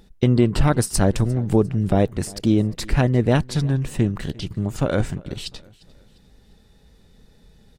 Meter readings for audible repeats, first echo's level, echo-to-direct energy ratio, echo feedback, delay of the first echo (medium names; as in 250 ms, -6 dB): 2, -23.0 dB, -22.0 dB, 41%, 351 ms